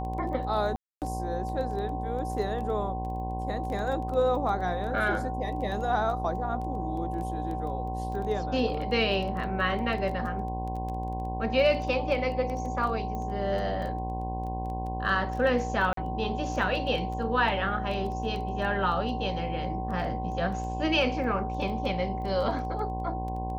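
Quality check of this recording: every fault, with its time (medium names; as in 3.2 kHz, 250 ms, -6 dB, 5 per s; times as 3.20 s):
buzz 60 Hz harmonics 18 -34 dBFS
crackle 11 per s -34 dBFS
whine 760 Hz -34 dBFS
0.76–1.02 s: dropout 258 ms
13.15 s: pop -24 dBFS
15.93–15.97 s: dropout 43 ms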